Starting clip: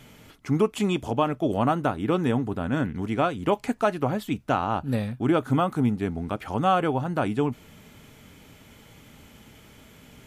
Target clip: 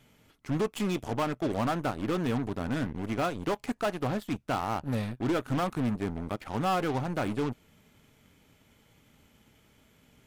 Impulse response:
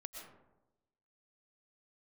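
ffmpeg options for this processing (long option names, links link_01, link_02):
-af "asoftclip=type=tanh:threshold=-25dB,aeval=exprs='0.0562*(cos(1*acos(clip(val(0)/0.0562,-1,1)))-cos(1*PI/2))+0.0112*(cos(3*acos(clip(val(0)/0.0562,-1,1)))-cos(3*PI/2))+0.00794*(cos(6*acos(clip(val(0)/0.0562,-1,1)))-cos(6*PI/2))+0.00126*(cos(7*acos(clip(val(0)/0.0562,-1,1)))-cos(7*PI/2))+0.00447*(cos(8*acos(clip(val(0)/0.0562,-1,1)))-cos(8*PI/2))':channel_layout=same"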